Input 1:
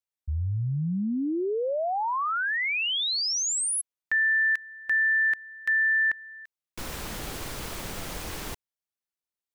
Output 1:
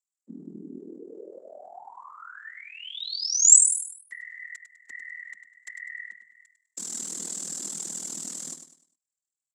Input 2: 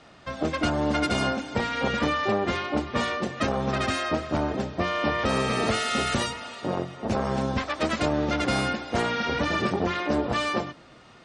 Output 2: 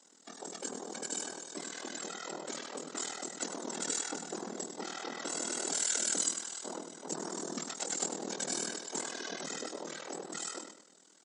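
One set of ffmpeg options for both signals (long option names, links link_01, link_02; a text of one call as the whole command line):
ffmpeg -i in.wav -filter_complex "[0:a]acompressor=threshold=-27dB:ratio=3:attack=44:release=229,afftfilt=real='hypot(re,im)*cos(2*PI*random(0))':imag='hypot(re,im)*sin(2*PI*random(1))':win_size=512:overlap=0.75,bass=frequency=250:gain=6,treble=frequency=4000:gain=15,asplit=2[link_01][link_02];[link_02]aecho=0:1:101|202|303|404:0.355|0.121|0.041|0.0139[link_03];[link_01][link_03]amix=inputs=2:normalize=0,afreqshift=170,highpass=frequency=42:width=0.5412,highpass=frequency=42:width=1.3066,equalizer=frequency=2500:width_type=o:width=0.28:gain=-6,aeval=exprs='val(0)*sin(2*PI*20*n/s)':channel_layout=same,dynaudnorm=framelen=470:gausssize=9:maxgain=4dB,lowpass=frequency=7500:width_type=q:width=9.2,volume=-10dB" out.wav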